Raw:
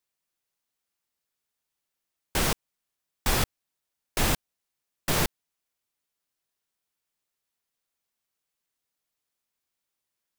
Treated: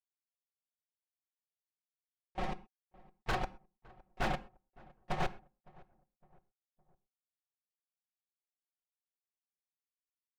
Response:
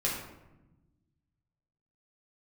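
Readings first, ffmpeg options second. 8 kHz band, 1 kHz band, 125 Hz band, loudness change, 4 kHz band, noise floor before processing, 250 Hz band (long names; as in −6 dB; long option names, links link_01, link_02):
−27.0 dB, −4.5 dB, −11.0 dB, −11.0 dB, −16.5 dB, −85 dBFS, −10.0 dB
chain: -filter_complex "[0:a]lowpass=2200,bandreject=frequency=1500:width=7.4,agate=range=-39dB:threshold=-23dB:ratio=16:detection=peak,equalizer=frequency=760:width_type=o:width=0.21:gain=13.5,aecho=1:1:5.5:0.89,acompressor=threshold=-48dB:ratio=1.5,aeval=exprs='0.0266*(abs(mod(val(0)/0.0266+3,4)-2)-1)':channel_layout=same,asplit=2[link_01][link_02];[link_02]adelay=561,lowpass=frequency=1200:poles=1,volume=-23dB,asplit=2[link_03][link_04];[link_04]adelay=561,lowpass=frequency=1200:poles=1,volume=0.46,asplit=2[link_05][link_06];[link_06]adelay=561,lowpass=frequency=1200:poles=1,volume=0.46[link_07];[link_01][link_03][link_05][link_07]amix=inputs=4:normalize=0,asplit=2[link_08][link_09];[1:a]atrim=start_sample=2205,afade=type=out:start_time=0.18:duration=0.01,atrim=end_sample=8379[link_10];[link_09][link_10]afir=irnorm=-1:irlink=0,volume=-19dB[link_11];[link_08][link_11]amix=inputs=2:normalize=0,volume=5dB"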